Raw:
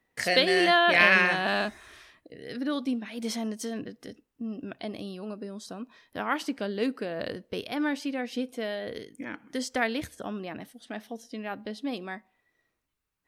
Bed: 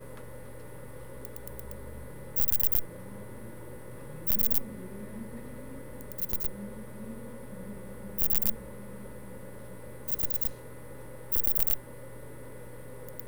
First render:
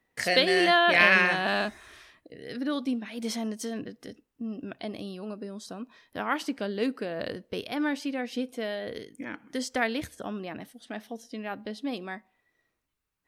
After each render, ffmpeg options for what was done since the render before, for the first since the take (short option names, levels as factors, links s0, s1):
-af anull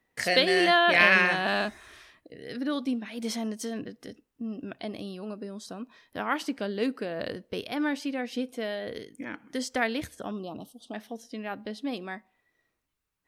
-filter_complex "[0:a]asettb=1/sr,asplit=3[s0][s1][s2];[s0]atrim=end=10.314[s3];[s1]atrim=start=10.31:end=10.94,asetpts=PTS-STARTPTS,afade=t=in:d=0.004:c=qsin,afade=t=out:st=0.626:d=0.004:c=qsin,asuperstop=centerf=1900:order=8:qfactor=1.1[s4];[s2]atrim=start=10.936[s5];[s3][s4]acrossfade=d=0.004:c1=hsin:c2=qsin[s6];[s6][s5]acrossfade=d=0.004:c1=qsin:c2=hsin"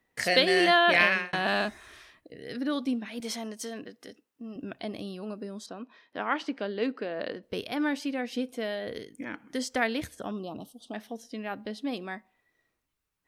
-filter_complex "[0:a]asettb=1/sr,asplit=3[s0][s1][s2];[s0]atrim=end=3.204[s3];[s1]atrim=start=3.2:end=4.56,asetpts=PTS-STARTPTS,afade=t=in:d=0.004:c=qsin,afade=t=out:st=1.356:d=0.004:c=qsin,highpass=f=420:p=1[s4];[s2]atrim=start=4.556[s5];[s3][s4]acrossfade=d=0.004:c1=hsin:c2=qsin[s6];[s6][s5]acrossfade=d=0.004:c1=qsin:c2=hsin,asettb=1/sr,asplit=3[s7][s8][s9];[s7]atrim=end=5.664[s10];[s8]atrim=start=5.66:end=7.43,asetpts=PTS-STARTPTS,afade=t=in:d=0.004:c=qsin,afade=t=out:st=1.766:d=0.004:c=qsin,highpass=230,lowpass=4100[s11];[s9]atrim=start=7.426[s12];[s10][s11]acrossfade=d=0.004:c1=hsin:c2=qsin[s13];[s13][s12]acrossfade=d=0.004:c1=qsin:c2=hsin,asplit=2[s14][s15];[s14]atrim=end=1.33,asetpts=PTS-STARTPTS,afade=t=out:st=0.93:d=0.4[s16];[s15]atrim=start=1.33,asetpts=PTS-STARTPTS,afade=t=in:d=0.004:c=hsin[s17];[s16][s17]concat=n=2:v=0:a=1"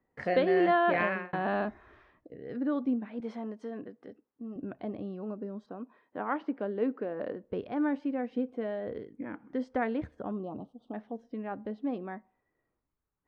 -af "lowpass=1100,bandreject=f=660:w=17"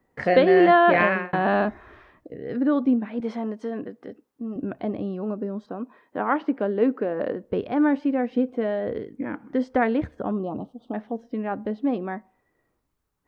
-af "volume=2.82"